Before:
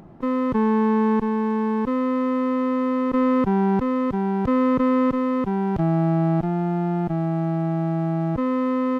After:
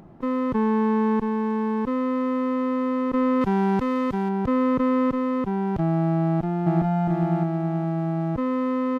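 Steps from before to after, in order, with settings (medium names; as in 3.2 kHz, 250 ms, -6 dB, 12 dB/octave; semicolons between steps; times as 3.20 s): 3.41–4.29 s: treble shelf 2 kHz +9 dB; 6.25–7.02 s: echo throw 410 ms, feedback 25%, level -0.5 dB; trim -2 dB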